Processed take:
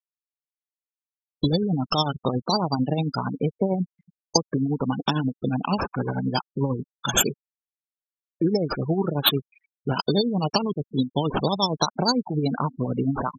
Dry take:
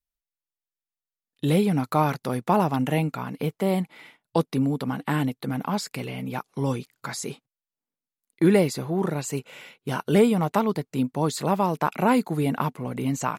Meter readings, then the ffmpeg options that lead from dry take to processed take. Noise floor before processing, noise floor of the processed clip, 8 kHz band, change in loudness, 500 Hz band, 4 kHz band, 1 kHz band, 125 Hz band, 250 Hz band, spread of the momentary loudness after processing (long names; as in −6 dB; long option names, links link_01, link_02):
below −85 dBFS, below −85 dBFS, +6.0 dB, +0.5 dB, −1.5 dB, +11.5 dB, −1.0 dB, +0.5 dB, −0.5 dB, 6 LU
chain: -filter_complex "[0:a]lowpass=frequency=11000:width=0.5412,lowpass=frequency=11000:width=1.3066,acompressor=threshold=-27dB:ratio=6,tremolo=f=11:d=0.48,highshelf=frequency=3100:gain=6.5,acrusher=samples=9:mix=1:aa=0.000001:lfo=1:lforange=5.4:lforate=0.21,dynaudnorm=framelen=300:gausssize=3:maxgain=10dB,adynamicequalizer=threshold=0.00355:dfrequency=7800:dqfactor=2:tfrequency=7800:tqfactor=2:attack=5:release=100:ratio=0.375:range=3.5:mode=cutabove:tftype=bell,asplit=2[link_01][link_02];[link_02]aecho=0:1:278|556|834|1112:0.0668|0.0381|0.0217|0.0124[link_03];[link_01][link_03]amix=inputs=2:normalize=0,afftfilt=real='re*gte(hypot(re,im),0.0891)':imag='im*gte(hypot(re,im),0.0891)':win_size=1024:overlap=0.75,aexciter=amount=13.9:drive=1.6:freq=3800,asuperstop=centerf=2000:order=4:qfactor=2.9,volume=-1dB"